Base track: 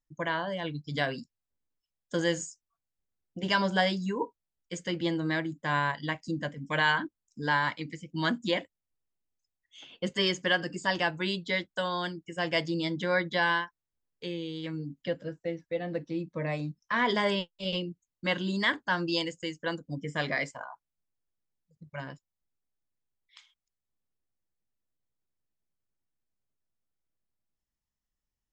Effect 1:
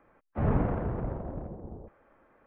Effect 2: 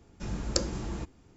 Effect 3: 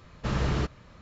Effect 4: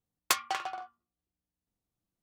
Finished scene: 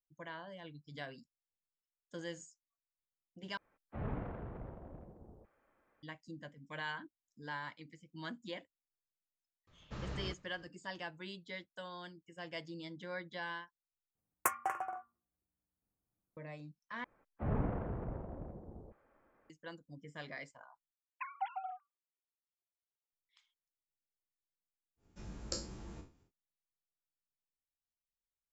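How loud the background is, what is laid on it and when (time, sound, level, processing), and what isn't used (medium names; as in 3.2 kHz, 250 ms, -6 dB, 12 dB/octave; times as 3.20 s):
base track -16 dB
3.57 s: replace with 1 -14 dB + treble shelf 2.4 kHz +11 dB
9.67 s: add 3 -15.5 dB
14.15 s: replace with 4 -2 dB + Butterworth band-stop 4 kHz, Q 0.58
17.04 s: replace with 1 -8.5 dB
20.91 s: replace with 4 -9 dB + formants replaced by sine waves
24.96 s: add 2 -14.5 dB, fades 0.10 s + spectral sustain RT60 0.35 s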